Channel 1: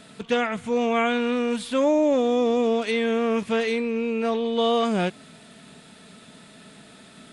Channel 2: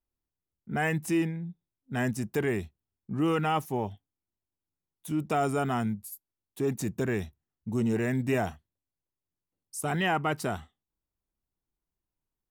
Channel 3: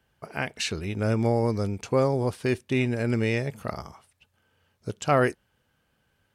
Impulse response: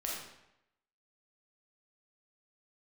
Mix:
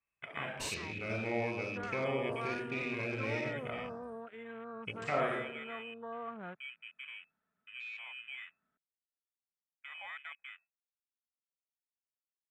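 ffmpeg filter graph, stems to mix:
-filter_complex "[0:a]lowpass=frequency=1400:width_type=q:width=2.2,equalizer=frequency=330:width=0.52:gain=-7,adelay=1450,volume=-18.5dB[link_01];[1:a]volume=-18dB,asplit=2[link_02][link_03];[2:a]acrossover=split=300[link_04][link_05];[link_04]acompressor=threshold=-29dB:ratio=6[link_06];[link_06][link_05]amix=inputs=2:normalize=0,volume=-6dB,asplit=2[link_07][link_08];[link_08]volume=-6.5dB[link_09];[link_03]apad=whole_len=279849[link_10];[link_07][link_10]sidechaincompress=threshold=-56dB:ratio=4:attack=16:release=658[link_11];[link_02][link_11]amix=inputs=2:normalize=0,lowpass=frequency=2300:width_type=q:width=0.5098,lowpass=frequency=2300:width_type=q:width=0.6013,lowpass=frequency=2300:width_type=q:width=0.9,lowpass=frequency=2300:width_type=q:width=2.563,afreqshift=-2700,acompressor=threshold=-38dB:ratio=6,volume=0dB[link_12];[3:a]atrim=start_sample=2205[link_13];[link_09][link_13]afir=irnorm=-1:irlink=0[link_14];[link_01][link_12][link_14]amix=inputs=3:normalize=0,equalizer=frequency=8500:width=2.6:gain=12,afwtdn=0.00398"

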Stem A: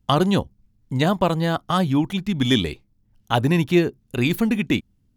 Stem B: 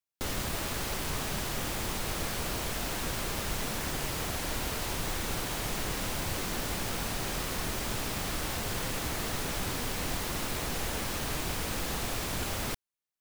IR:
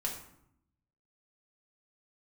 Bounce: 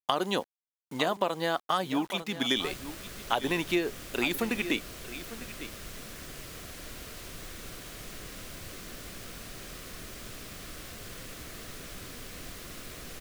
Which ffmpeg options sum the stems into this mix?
-filter_complex "[0:a]highpass=380,acrusher=bits=7:mix=0:aa=0.000001,volume=-1.5dB,asplit=2[link_01][link_02];[link_02]volume=-15.5dB[link_03];[1:a]equalizer=frequency=870:width=4.5:gain=-13,adelay=2350,volume=-9dB[link_04];[link_03]aecho=0:1:900:1[link_05];[link_01][link_04][link_05]amix=inputs=3:normalize=0,equalizer=frequency=92:width=0.53:gain=-2,acompressor=threshold=-23dB:ratio=6"

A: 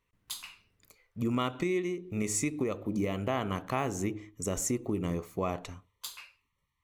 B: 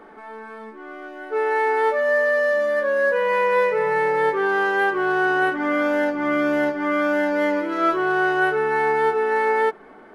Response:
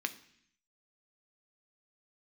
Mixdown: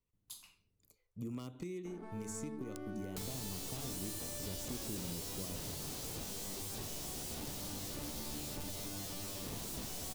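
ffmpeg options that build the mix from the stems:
-filter_complex "[0:a]aeval=exprs='0.0841*(abs(mod(val(0)/0.0841+3,4)-2)-1)':channel_layout=same,volume=-6dB[link_01];[1:a]lowshelf=frequency=300:gain=7.5,aeval=exprs='(mod(15.8*val(0)+1,2)-1)/15.8':channel_layout=same,adelay=1850,volume=-2.5dB[link_02];[link_01][link_02]amix=inputs=2:normalize=0,acrossover=split=290|1100|4500[link_03][link_04][link_05][link_06];[link_03]acompressor=threshold=-41dB:ratio=4[link_07];[link_04]acompressor=threshold=-46dB:ratio=4[link_08];[link_05]acompressor=threshold=-45dB:ratio=4[link_09];[link_06]acompressor=threshold=-44dB:ratio=4[link_10];[link_07][link_08][link_09][link_10]amix=inputs=4:normalize=0,equalizer=frequency=1700:width_type=o:width=2.3:gain=-14"

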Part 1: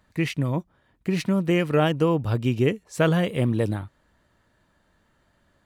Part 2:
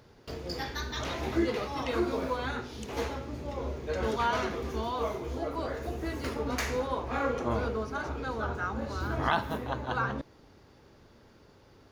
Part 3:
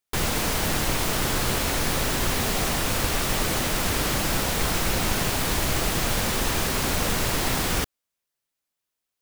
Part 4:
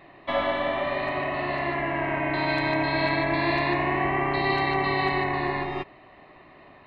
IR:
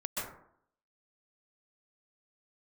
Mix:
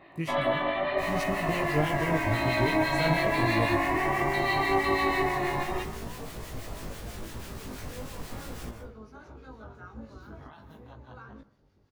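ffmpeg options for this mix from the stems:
-filter_complex "[0:a]highshelf=frequency=4000:gain=11,aeval=exprs='sgn(val(0))*max(abs(val(0))-0.00211,0)':channel_layout=same,volume=-9dB[link_01];[1:a]alimiter=limit=-24dB:level=0:latency=1:release=172,adelay=1200,volume=-10.5dB,asplit=2[link_02][link_03];[link_03]volume=-22dB[link_04];[2:a]adelay=850,volume=-17.5dB,asplit=2[link_05][link_06];[link_06]volume=-7.5dB[link_07];[3:a]lowshelf=frequency=220:gain=-10.5,volume=1.5dB,asplit=2[link_08][link_09];[link_09]volume=-13.5dB[link_10];[4:a]atrim=start_sample=2205[link_11];[link_04][link_07][link_10]amix=inputs=3:normalize=0[link_12];[link_12][link_11]afir=irnorm=-1:irlink=0[link_13];[link_01][link_02][link_05][link_08][link_13]amix=inputs=5:normalize=0,lowshelf=frequency=350:gain=7.5,flanger=delay=17.5:depth=2.5:speed=0.81,acrossover=split=1300[link_14][link_15];[link_14]aeval=exprs='val(0)*(1-0.5/2+0.5/2*cos(2*PI*6.1*n/s))':channel_layout=same[link_16];[link_15]aeval=exprs='val(0)*(1-0.5/2-0.5/2*cos(2*PI*6.1*n/s))':channel_layout=same[link_17];[link_16][link_17]amix=inputs=2:normalize=0"

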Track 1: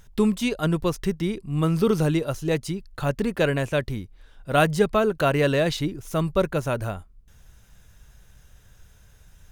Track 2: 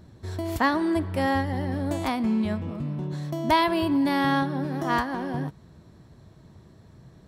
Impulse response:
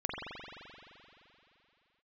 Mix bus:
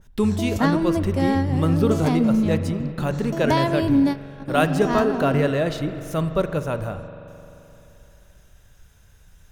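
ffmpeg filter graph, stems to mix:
-filter_complex "[0:a]adynamicequalizer=threshold=0.01:dfrequency=1900:dqfactor=0.7:tfrequency=1900:tqfactor=0.7:attack=5:release=100:ratio=0.375:range=3:mode=cutabove:tftype=highshelf,volume=-2dB,asplit=3[link_01][link_02][link_03];[link_02]volume=-12.5dB[link_04];[1:a]equalizer=frequency=100:width_type=o:width=0.67:gain=11,equalizer=frequency=250:width_type=o:width=0.67:gain=10,equalizer=frequency=630:width_type=o:width=0.67:gain=5,equalizer=frequency=6300:width_type=o:width=0.67:gain=10,volume=-3.5dB[link_05];[link_03]apad=whole_len=320808[link_06];[link_05][link_06]sidechaingate=range=-25dB:threshold=-43dB:ratio=16:detection=peak[link_07];[2:a]atrim=start_sample=2205[link_08];[link_04][link_08]afir=irnorm=-1:irlink=0[link_09];[link_01][link_07][link_09]amix=inputs=3:normalize=0"

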